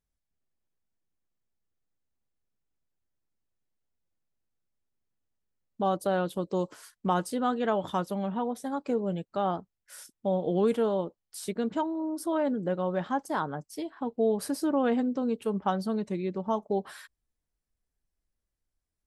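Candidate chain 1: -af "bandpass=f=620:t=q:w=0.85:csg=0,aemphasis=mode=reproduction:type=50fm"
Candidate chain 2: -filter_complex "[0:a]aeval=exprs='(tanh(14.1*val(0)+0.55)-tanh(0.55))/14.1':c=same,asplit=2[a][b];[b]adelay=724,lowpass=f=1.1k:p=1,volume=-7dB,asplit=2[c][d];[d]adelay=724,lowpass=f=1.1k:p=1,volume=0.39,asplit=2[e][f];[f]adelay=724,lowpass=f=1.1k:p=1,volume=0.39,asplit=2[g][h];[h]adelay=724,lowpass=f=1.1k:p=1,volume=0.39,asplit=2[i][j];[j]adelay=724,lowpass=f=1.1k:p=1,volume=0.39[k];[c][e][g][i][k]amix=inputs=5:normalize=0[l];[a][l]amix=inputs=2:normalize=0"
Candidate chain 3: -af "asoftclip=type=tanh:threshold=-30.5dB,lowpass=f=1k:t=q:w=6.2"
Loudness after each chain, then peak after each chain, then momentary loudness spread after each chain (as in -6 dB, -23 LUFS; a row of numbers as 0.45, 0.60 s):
-32.5, -33.0, -31.5 LUFS; -16.0, -17.0, -16.0 dBFS; 8, 11, 7 LU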